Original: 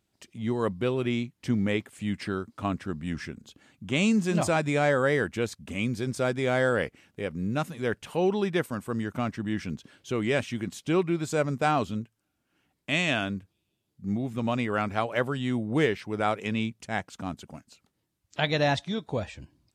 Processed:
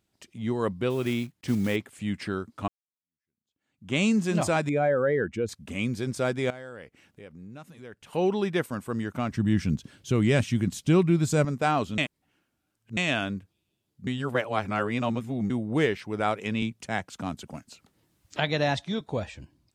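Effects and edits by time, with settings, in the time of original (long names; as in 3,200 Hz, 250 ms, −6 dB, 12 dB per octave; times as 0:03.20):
0:00.90–0:01.77: one scale factor per block 5 bits
0:02.68–0:03.93: fade in exponential
0:04.69–0:05.49: expanding power law on the bin magnitudes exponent 1.6
0:06.50–0:08.13: downward compressor 2 to 1, threshold −53 dBFS
0:09.31–0:11.45: bass and treble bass +11 dB, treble +5 dB
0:11.98–0:12.97: reverse
0:14.07–0:15.50: reverse
0:16.62–0:19.01: multiband upward and downward compressor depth 40%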